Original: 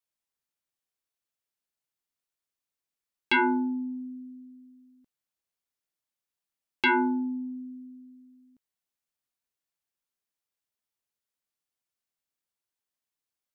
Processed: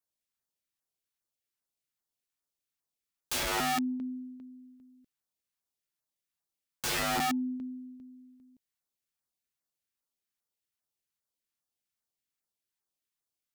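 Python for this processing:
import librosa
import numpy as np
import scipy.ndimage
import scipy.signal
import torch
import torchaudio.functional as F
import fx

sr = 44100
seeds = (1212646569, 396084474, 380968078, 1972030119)

y = fx.filter_lfo_notch(x, sr, shape='saw_down', hz=2.5, low_hz=390.0, high_hz=3500.0, q=0.96)
y = fx.dynamic_eq(y, sr, hz=230.0, q=4.0, threshold_db=-43.0, ratio=4.0, max_db=4)
y = (np.mod(10.0 ** (26.0 / 20.0) * y + 1.0, 2.0) - 1.0) / 10.0 ** (26.0 / 20.0)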